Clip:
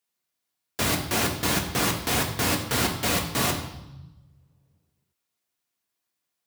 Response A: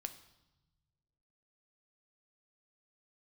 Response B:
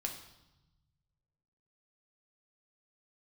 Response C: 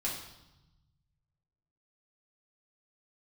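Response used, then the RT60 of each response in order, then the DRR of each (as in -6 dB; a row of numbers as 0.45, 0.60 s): B; 1.0, 0.95, 0.95 s; 8.0, 1.5, -6.0 dB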